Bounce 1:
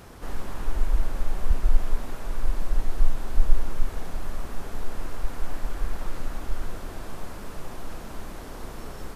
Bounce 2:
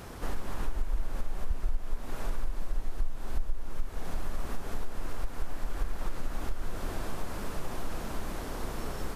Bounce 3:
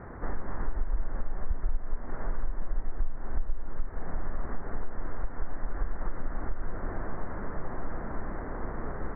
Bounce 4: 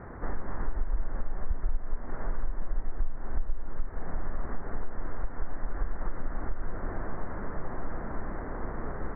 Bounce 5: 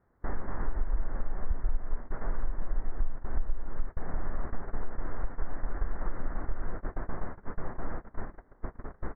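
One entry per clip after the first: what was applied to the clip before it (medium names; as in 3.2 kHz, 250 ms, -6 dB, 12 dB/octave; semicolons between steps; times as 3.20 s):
compression 5:1, threshold -26 dBFS, peak gain reduction 17.5 dB; trim +2 dB
steep low-pass 2 kHz 72 dB/octave; trim +1 dB
no audible change
gate -29 dBFS, range -27 dB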